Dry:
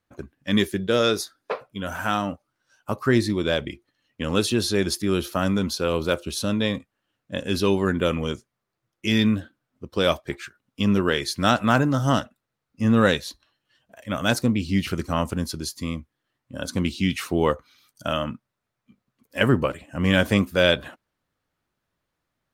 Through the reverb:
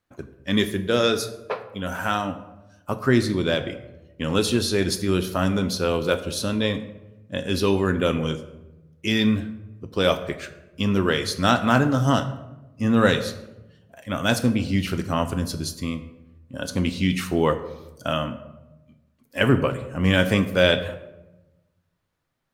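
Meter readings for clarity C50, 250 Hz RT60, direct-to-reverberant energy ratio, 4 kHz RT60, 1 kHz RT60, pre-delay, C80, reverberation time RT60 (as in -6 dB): 12.5 dB, 1.4 s, 8.5 dB, 0.55 s, 0.90 s, 7 ms, 14.0 dB, 1.0 s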